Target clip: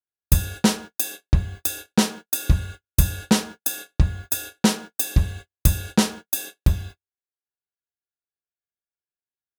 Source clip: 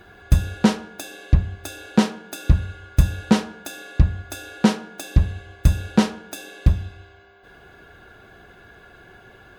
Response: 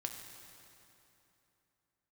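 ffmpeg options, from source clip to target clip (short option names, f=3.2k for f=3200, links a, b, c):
-af "aemphasis=mode=production:type=75fm,agate=range=-58dB:threshold=-33dB:ratio=16:detection=peak,volume=-1.5dB"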